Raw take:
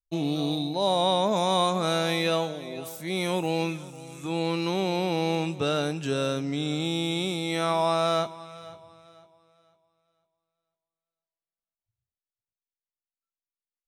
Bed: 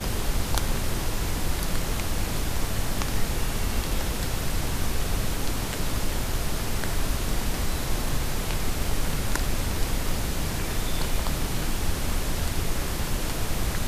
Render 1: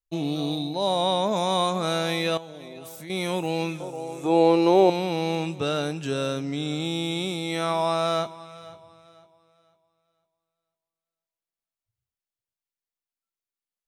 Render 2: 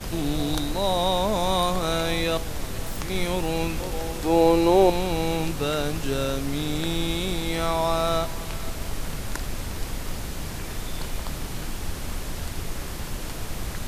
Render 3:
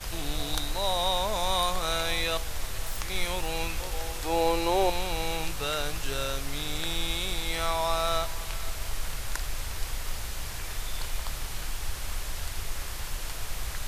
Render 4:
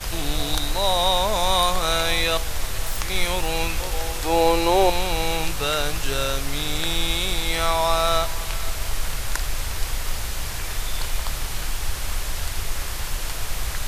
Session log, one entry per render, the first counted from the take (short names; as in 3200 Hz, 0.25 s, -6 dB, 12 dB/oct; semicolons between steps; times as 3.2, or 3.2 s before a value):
2.37–3.1 compressor, threshold -36 dBFS; 3.8–4.9 band shelf 560 Hz +12.5 dB
add bed -4.5 dB
bell 230 Hz -15 dB 2.3 oct
gain +7 dB; limiter -3 dBFS, peak gain reduction 2.5 dB